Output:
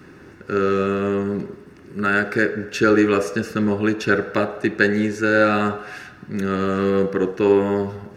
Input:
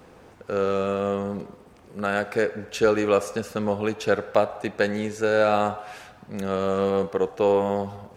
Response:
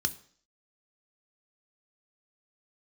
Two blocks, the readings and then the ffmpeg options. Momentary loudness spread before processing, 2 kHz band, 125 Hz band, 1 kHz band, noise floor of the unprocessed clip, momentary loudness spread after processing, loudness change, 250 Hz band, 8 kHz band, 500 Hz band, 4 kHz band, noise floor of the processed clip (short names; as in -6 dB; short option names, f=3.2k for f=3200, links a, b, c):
13 LU, +9.0 dB, +6.5 dB, +2.0 dB, -51 dBFS, 11 LU, +4.5 dB, +8.5 dB, +1.5 dB, +2.5 dB, +3.0 dB, -45 dBFS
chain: -filter_complex "[0:a]asplit=2[a][b];[b]equalizer=f=370:w=1.4:g=6.5[c];[1:a]atrim=start_sample=2205,lowpass=2.4k,lowshelf=f=350:g=-11[d];[c][d]afir=irnorm=-1:irlink=0,volume=2.5dB[e];[a][e]amix=inputs=2:normalize=0"